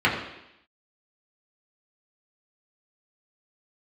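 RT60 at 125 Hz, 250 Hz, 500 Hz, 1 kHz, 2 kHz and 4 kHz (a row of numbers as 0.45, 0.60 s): 0.70, 0.85, 0.80, 0.85, 0.90, 0.95 s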